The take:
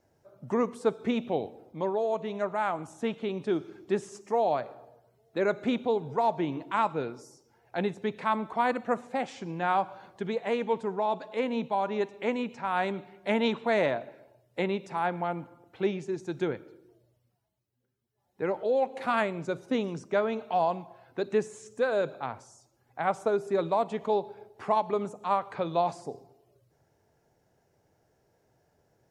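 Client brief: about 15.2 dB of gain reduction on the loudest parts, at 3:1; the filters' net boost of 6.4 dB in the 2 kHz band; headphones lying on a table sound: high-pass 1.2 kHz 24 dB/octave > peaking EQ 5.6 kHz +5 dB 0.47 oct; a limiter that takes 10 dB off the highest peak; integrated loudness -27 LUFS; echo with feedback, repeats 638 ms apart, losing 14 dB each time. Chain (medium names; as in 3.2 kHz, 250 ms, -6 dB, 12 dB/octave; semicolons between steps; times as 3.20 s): peaking EQ 2 kHz +8.5 dB; compression 3:1, threshold -41 dBFS; peak limiter -33.5 dBFS; high-pass 1.2 kHz 24 dB/octave; peaking EQ 5.6 kHz +5 dB 0.47 oct; feedback delay 638 ms, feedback 20%, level -14 dB; trim +24.5 dB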